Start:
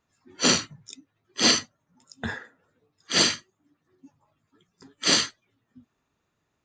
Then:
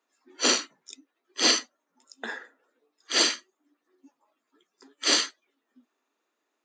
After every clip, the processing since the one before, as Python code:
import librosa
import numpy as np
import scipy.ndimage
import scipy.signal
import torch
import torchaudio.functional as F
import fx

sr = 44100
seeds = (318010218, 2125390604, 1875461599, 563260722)

y = scipy.signal.sosfilt(scipy.signal.butter(6, 270.0, 'highpass', fs=sr, output='sos'), x)
y = y * 10.0 ** (-1.5 / 20.0)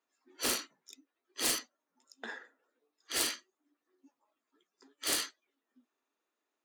y = fx.self_delay(x, sr, depth_ms=0.13)
y = y * 10.0 ** (-7.5 / 20.0)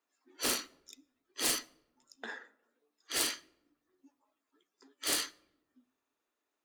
y = fx.room_shoebox(x, sr, seeds[0], volume_m3=3300.0, walls='furnished', distance_m=0.36)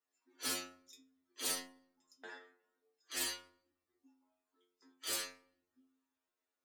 y = fx.stiff_resonator(x, sr, f0_hz=87.0, decay_s=0.57, stiffness=0.002)
y = y * 10.0 ** (5.5 / 20.0)